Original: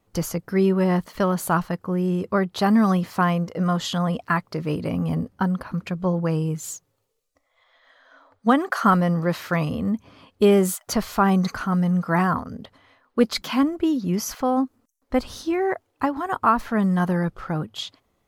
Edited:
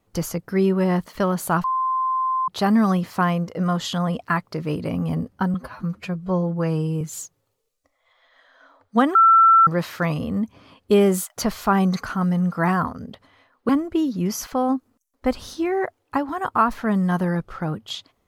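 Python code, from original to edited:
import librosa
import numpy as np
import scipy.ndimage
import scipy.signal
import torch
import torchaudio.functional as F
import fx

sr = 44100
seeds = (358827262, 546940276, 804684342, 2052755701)

y = fx.edit(x, sr, fx.bleep(start_s=1.64, length_s=0.84, hz=1040.0, db=-19.0),
    fx.stretch_span(start_s=5.54, length_s=0.98, factor=1.5),
    fx.bleep(start_s=8.66, length_s=0.52, hz=1340.0, db=-9.5),
    fx.cut(start_s=13.2, length_s=0.37), tone=tone)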